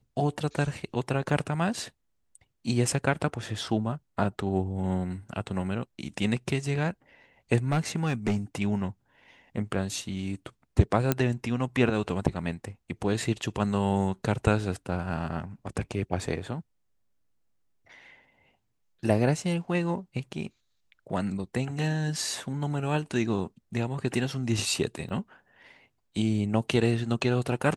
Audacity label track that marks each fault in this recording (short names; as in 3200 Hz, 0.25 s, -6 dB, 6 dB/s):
1.300000	1.300000	gap 2.9 ms
7.710000	8.370000	clipped -20.5 dBFS
11.120000	11.120000	pop -9 dBFS
25.090000	25.100000	gap 6.9 ms